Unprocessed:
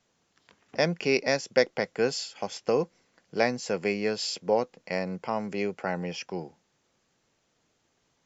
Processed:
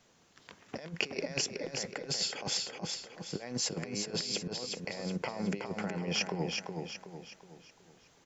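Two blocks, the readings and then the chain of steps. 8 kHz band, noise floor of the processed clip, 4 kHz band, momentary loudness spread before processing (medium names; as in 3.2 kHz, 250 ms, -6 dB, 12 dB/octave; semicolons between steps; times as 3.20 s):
no reading, -65 dBFS, +1.0 dB, 11 LU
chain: peak limiter -17.5 dBFS, peak gain reduction 9.5 dB; compressor with a negative ratio -36 dBFS, ratio -0.5; feedback delay 371 ms, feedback 42%, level -4.5 dB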